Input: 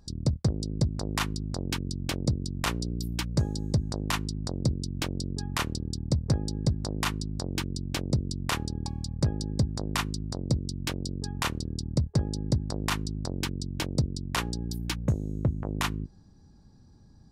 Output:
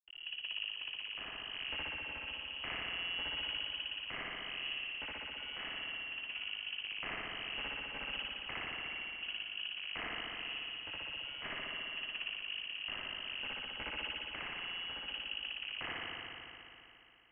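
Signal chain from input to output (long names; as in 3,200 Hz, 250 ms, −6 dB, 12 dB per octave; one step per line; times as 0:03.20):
high-pass filter 330 Hz 12 dB per octave
downward compressor 3 to 1, threshold −37 dBFS, peak gain reduction 10 dB
soft clipping −32.5 dBFS, distortion −12 dB
rotating-speaker cabinet horn 1.1 Hz, later 6 Hz, at 0:06.88
dead-zone distortion −55.5 dBFS
spring reverb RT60 3 s, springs 57 ms, chirp 30 ms, DRR −7.5 dB
voice inversion scrambler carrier 3,100 Hz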